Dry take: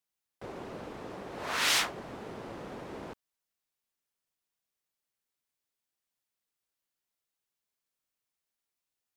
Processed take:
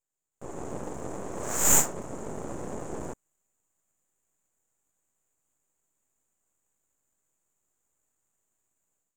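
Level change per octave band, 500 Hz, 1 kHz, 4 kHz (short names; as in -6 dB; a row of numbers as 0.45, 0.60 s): +5.5, +1.5, -11.5 dB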